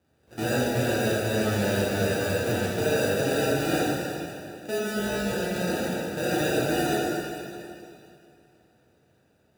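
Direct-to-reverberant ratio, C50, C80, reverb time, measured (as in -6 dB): -7.5 dB, -3.5 dB, -1.5 dB, 2.6 s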